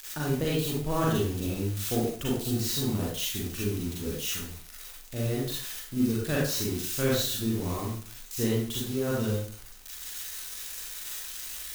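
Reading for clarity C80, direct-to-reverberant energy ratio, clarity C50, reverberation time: 5.0 dB, -5.5 dB, -0.5 dB, 0.45 s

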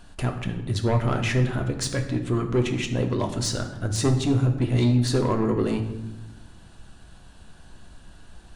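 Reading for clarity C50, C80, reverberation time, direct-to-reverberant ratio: 9.0 dB, 11.0 dB, 1.0 s, 4.0 dB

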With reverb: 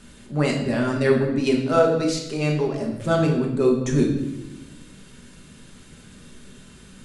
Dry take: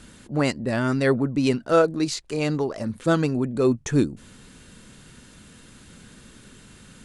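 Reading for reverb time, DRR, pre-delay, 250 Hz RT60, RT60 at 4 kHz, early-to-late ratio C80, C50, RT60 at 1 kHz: 0.95 s, -1.0 dB, 5 ms, 1.5 s, 0.85 s, 7.5 dB, 5.0 dB, 0.85 s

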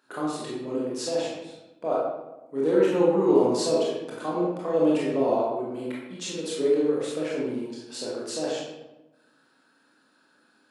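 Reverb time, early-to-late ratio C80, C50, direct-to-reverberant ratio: 1.0 s, 2.5 dB, -0.5 dB, -6.0 dB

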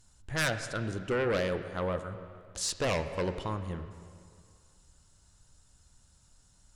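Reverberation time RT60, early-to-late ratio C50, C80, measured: 2.1 s, 9.5 dB, 10.5 dB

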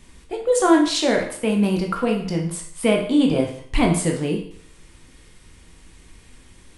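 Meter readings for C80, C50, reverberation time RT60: 10.5 dB, 7.0 dB, 0.60 s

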